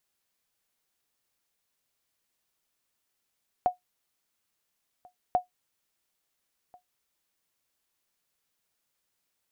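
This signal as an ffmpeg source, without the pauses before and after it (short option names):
-f lavfi -i "aevalsrc='0.178*(sin(2*PI*725*mod(t,1.69))*exp(-6.91*mod(t,1.69)/0.13)+0.0398*sin(2*PI*725*max(mod(t,1.69)-1.39,0))*exp(-6.91*max(mod(t,1.69)-1.39,0)/0.13))':d=3.38:s=44100"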